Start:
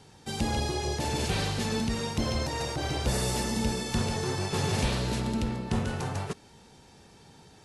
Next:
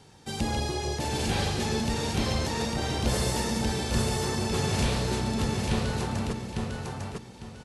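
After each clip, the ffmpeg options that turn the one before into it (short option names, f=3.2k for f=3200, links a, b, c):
-af "aecho=1:1:851|1702|2553|3404:0.668|0.18|0.0487|0.0132"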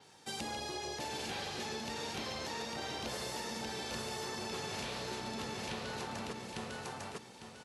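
-af "highpass=f=540:p=1,adynamicequalizer=threshold=0.002:dfrequency=9100:dqfactor=1.6:tfrequency=9100:tqfactor=1.6:attack=5:release=100:ratio=0.375:range=3.5:mode=cutabove:tftype=bell,acompressor=threshold=-35dB:ratio=6,volume=-2dB"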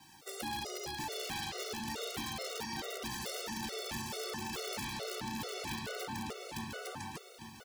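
-af "acrusher=bits=9:mix=0:aa=0.000001,aeval=exprs='(mod(37.6*val(0)+1,2)-1)/37.6':c=same,afftfilt=real='re*gt(sin(2*PI*2.3*pts/sr)*(1-2*mod(floor(b*sr/1024/380),2)),0)':imag='im*gt(sin(2*PI*2.3*pts/sr)*(1-2*mod(floor(b*sr/1024/380),2)),0)':win_size=1024:overlap=0.75,volume=3.5dB"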